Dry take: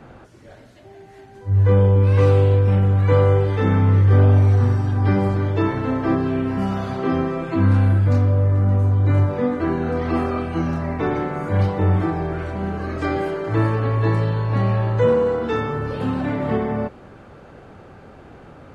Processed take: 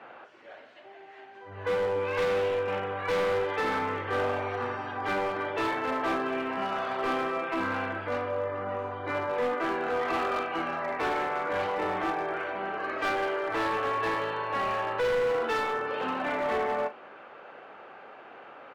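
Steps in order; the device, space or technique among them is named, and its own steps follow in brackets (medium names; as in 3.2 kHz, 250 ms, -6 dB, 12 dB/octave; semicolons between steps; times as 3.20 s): megaphone (band-pass 650–2600 Hz; peaking EQ 2.8 kHz +5 dB 0.47 oct; hard clipper -26 dBFS, distortion -11 dB; doubling 39 ms -12 dB); trim +1.5 dB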